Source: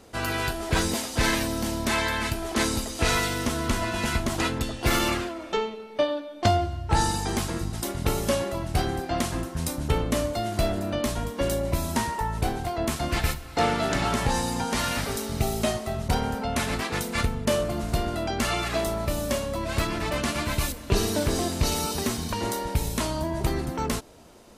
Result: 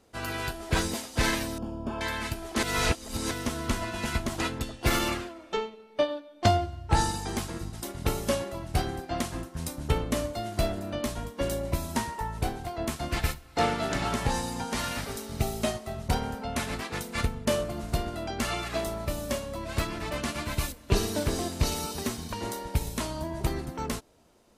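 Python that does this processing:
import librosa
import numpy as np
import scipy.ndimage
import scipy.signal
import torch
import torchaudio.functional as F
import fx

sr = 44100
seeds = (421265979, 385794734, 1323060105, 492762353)

y = fx.moving_average(x, sr, points=22, at=(1.58, 2.01))
y = fx.edit(y, sr, fx.reverse_span(start_s=2.63, length_s=0.68), tone=tone)
y = fx.upward_expand(y, sr, threshold_db=-39.0, expansion=1.5)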